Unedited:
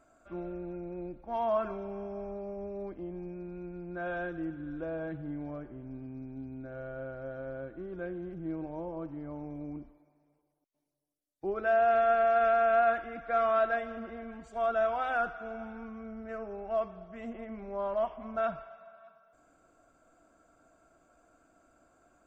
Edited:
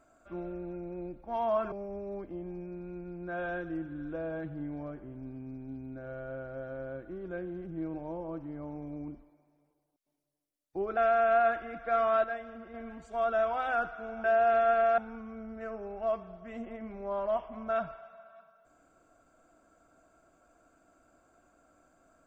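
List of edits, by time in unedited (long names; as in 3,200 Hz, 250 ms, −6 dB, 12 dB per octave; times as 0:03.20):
0:01.72–0:02.40: remove
0:11.65–0:12.39: move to 0:15.66
0:13.66–0:14.16: clip gain −5.5 dB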